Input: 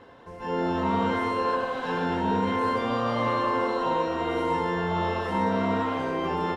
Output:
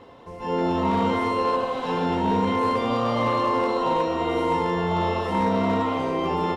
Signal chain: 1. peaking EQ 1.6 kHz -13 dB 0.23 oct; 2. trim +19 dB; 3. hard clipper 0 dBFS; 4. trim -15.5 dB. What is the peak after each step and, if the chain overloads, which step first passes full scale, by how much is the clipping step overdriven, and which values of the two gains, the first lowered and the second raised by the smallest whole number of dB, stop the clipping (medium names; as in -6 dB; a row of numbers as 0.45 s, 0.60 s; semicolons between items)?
-13.5 dBFS, +5.5 dBFS, 0.0 dBFS, -15.5 dBFS; step 2, 5.5 dB; step 2 +13 dB, step 4 -9.5 dB